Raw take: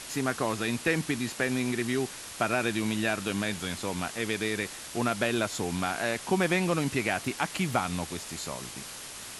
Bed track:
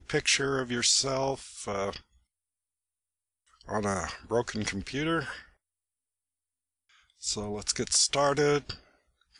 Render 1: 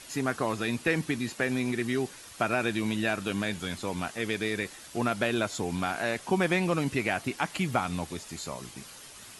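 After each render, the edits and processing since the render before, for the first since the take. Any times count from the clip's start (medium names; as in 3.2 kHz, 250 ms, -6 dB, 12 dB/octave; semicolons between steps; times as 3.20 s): noise reduction 8 dB, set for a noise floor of -42 dBFS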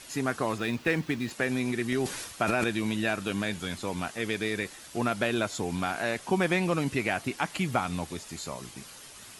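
0.58–1.31 s: median filter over 5 samples; 1.92–2.64 s: transient shaper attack 0 dB, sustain +10 dB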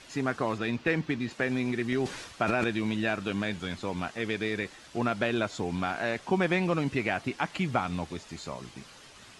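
distance through air 87 m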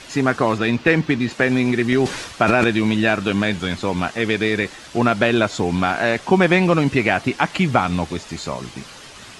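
trim +11.5 dB; peak limiter -1 dBFS, peak gain reduction 0.5 dB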